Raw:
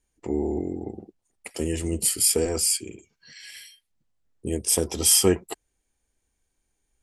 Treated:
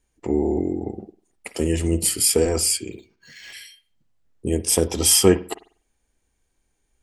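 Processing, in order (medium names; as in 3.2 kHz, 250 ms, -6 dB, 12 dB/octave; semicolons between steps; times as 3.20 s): treble shelf 5.1 kHz -4.5 dB; on a send at -14.5 dB: reverberation, pre-delay 48 ms; 2.92–3.53 s: on the sum: decimation joined by straight lines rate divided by 4×; trim +5 dB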